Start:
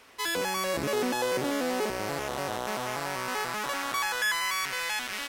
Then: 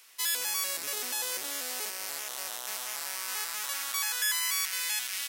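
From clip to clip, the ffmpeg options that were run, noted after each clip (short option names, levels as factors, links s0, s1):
-af "aderivative,volume=2"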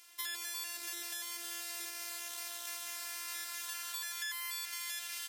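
-filter_complex "[0:a]acrossover=split=1500|3700[s0][s1][s2];[s0]acompressor=threshold=0.00282:ratio=4[s3];[s1]acompressor=threshold=0.00708:ratio=4[s4];[s2]acompressor=threshold=0.0158:ratio=4[s5];[s3][s4][s5]amix=inputs=3:normalize=0,afftfilt=real='hypot(re,im)*cos(PI*b)':imag='0':win_size=512:overlap=0.75,volume=1.12"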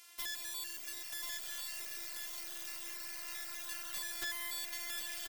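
-af "aeval=exprs='(mod(28.2*val(0)+1,2)-1)/28.2':c=same,aecho=1:1:1038:0.631,volume=1.12"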